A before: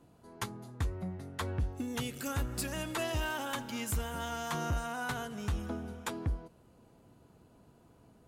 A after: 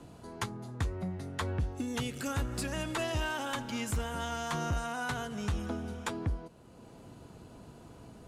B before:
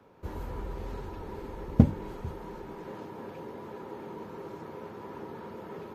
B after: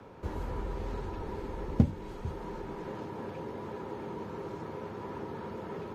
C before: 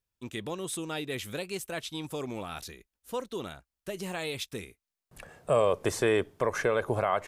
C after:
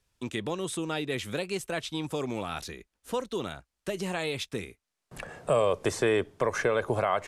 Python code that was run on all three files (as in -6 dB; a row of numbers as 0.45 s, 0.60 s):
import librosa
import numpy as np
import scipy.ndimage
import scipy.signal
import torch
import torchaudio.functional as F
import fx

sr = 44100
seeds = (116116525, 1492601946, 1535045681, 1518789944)

y = scipy.signal.sosfilt(scipy.signal.butter(2, 9900.0, 'lowpass', fs=sr, output='sos'), x)
y = fx.band_squash(y, sr, depth_pct=40)
y = y * librosa.db_to_amplitude(1.5)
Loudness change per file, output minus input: +1.5 LU, -2.5 LU, +1.0 LU